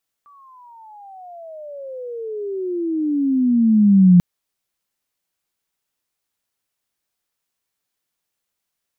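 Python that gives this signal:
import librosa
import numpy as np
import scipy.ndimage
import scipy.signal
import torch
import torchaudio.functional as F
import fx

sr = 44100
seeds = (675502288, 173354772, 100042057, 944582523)

y = fx.riser_tone(sr, length_s=3.94, level_db=-6.0, wave='sine', hz=1170.0, rise_st=-33.0, swell_db=39.0)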